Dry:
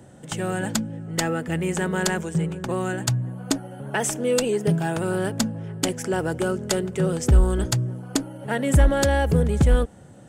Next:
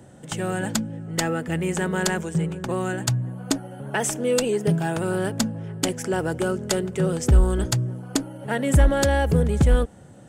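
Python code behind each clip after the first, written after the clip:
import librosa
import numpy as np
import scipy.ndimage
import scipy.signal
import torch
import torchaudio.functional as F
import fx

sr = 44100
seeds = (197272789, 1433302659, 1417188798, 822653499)

y = x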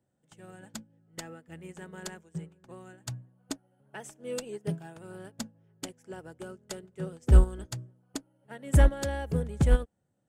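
y = fx.upward_expand(x, sr, threshold_db=-31.0, expansion=2.5)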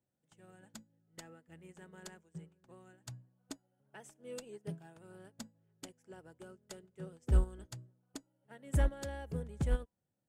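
y = fx.comb_fb(x, sr, f0_hz=990.0, decay_s=0.25, harmonics='all', damping=0.0, mix_pct=30)
y = y * 10.0 ** (-7.0 / 20.0)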